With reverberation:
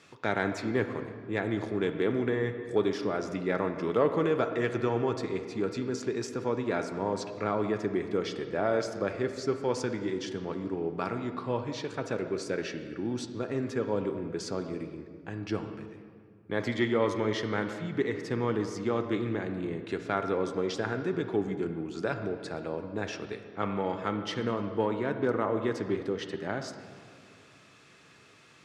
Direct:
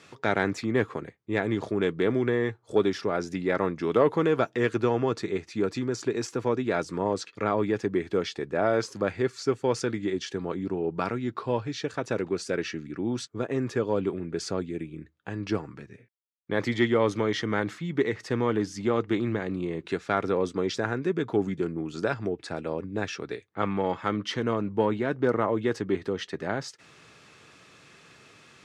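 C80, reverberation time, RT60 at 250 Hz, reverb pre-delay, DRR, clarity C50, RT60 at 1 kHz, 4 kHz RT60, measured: 9.0 dB, 2.1 s, 2.4 s, 34 ms, 7.5 dB, 8.0 dB, 2.0 s, 1.4 s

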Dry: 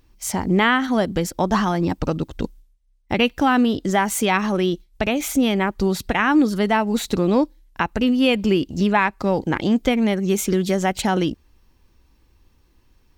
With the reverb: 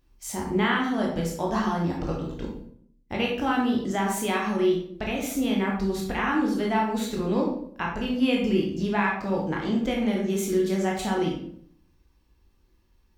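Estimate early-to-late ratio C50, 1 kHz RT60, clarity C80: 4.0 dB, 0.55 s, 7.5 dB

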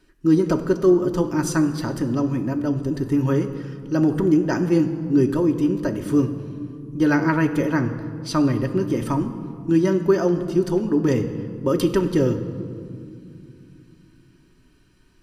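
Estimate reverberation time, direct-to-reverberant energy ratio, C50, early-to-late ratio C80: 2.5 s, 3.0 dB, 10.5 dB, 12.0 dB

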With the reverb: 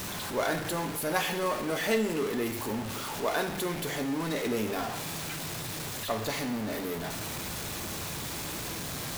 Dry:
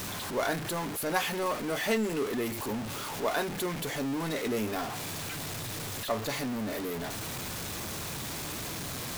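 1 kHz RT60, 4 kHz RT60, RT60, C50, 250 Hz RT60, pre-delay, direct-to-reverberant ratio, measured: 1.0 s, 0.90 s, 1.0 s, 9.5 dB, 1.0 s, 5 ms, 6.5 dB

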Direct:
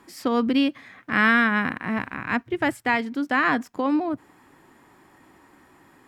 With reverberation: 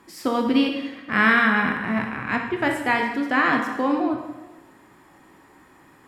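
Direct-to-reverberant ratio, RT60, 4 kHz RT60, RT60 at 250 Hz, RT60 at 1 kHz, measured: 2.0 dB, 1.1 s, 1.0 s, 1.2 s, 1.1 s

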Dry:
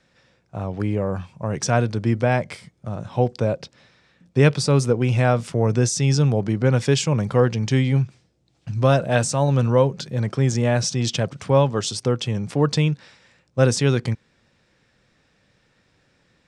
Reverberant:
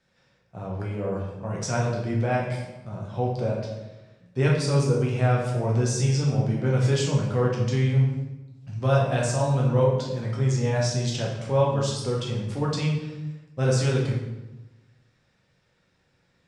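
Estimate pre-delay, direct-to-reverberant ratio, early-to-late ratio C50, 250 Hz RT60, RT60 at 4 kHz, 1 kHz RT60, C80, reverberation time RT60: 6 ms, -3.5 dB, 2.5 dB, 1.2 s, 0.75 s, 1.0 s, 5.0 dB, 1.0 s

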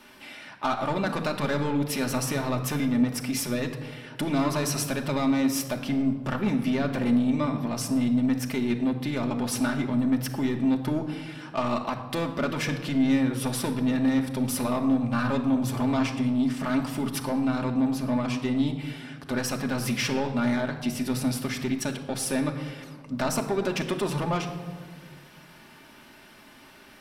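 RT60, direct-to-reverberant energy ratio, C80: 1.7 s, 1.0 dB, 11.0 dB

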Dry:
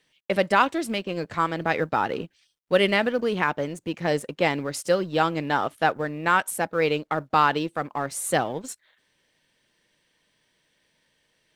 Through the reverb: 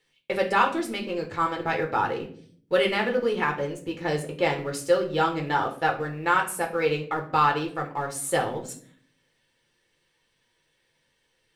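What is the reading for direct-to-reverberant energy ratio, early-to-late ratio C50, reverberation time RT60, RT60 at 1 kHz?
1.0 dB, 11.0 dB, 0.50 s, 0.45 s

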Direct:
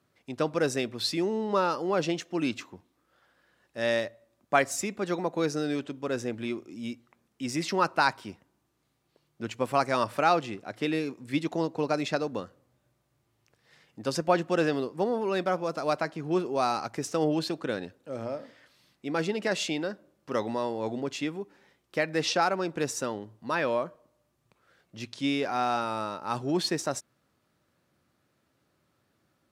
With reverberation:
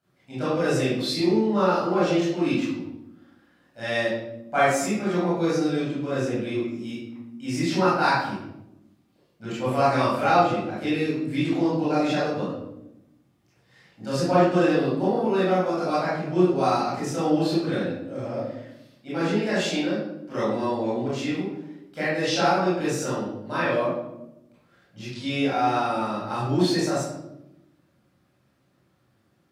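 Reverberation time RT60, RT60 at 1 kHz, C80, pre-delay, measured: 0.90 s, 0.75 s, 3.5 dB, 20 ms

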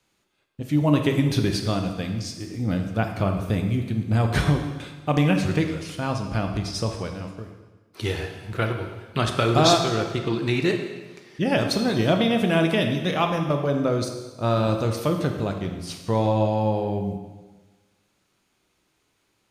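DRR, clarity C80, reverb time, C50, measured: 4.0 dB, 7.5 dB, 1.3 s, 6.0 dB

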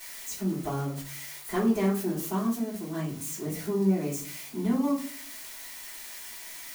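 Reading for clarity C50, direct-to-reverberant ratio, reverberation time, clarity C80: 7.0 dB, -10.0 dB, 0.45 s, 12.5 dB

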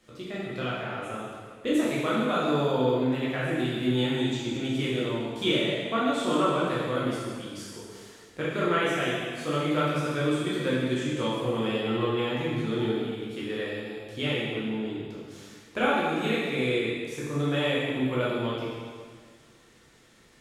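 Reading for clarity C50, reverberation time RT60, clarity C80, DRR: -1.5 dB, 1.7 s, 0.5 dB, -8.0 dB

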